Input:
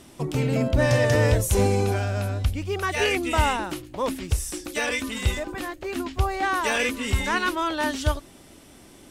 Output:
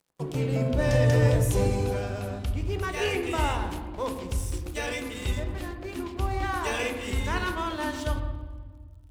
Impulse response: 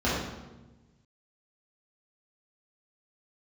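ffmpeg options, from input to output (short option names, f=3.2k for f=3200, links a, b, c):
-filter_complex "[0:a]aeval=exprs='sgn(val(0))*max(abs(val(0))-0.00841,0)':c=same,asplit=2[a][b];[1:a]atrim=start_sample=2205,asetrate=29988,aresample=44100[c];[b][c]afir=irnorm=-1:irlink=0,volume=-20dB[d];[a][d]amix=inputs=2:normalize=0,volume=-6.5dB"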